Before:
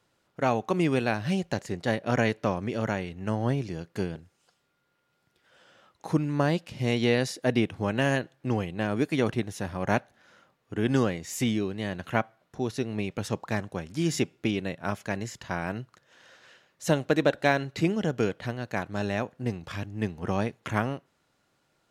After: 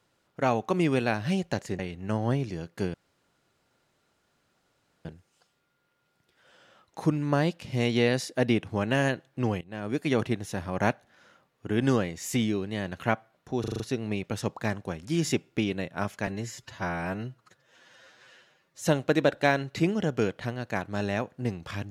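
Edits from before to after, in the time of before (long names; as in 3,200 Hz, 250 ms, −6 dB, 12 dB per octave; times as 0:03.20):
0:01.79–0:02.97: remove
0:04.12: splice in room tone 2.11 s
0:08.68–0:09.18: fade in, from −19.5 dB
0:12.67: stutter 0.04 s, 6 plays
0:15.14–0:16.86: time-stretch 1.5×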